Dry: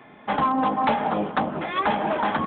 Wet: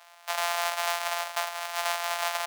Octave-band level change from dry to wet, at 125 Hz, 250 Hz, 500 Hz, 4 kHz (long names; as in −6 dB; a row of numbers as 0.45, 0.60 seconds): below −40 dB, below −40 dB, −7.0 dB, +5.0 dB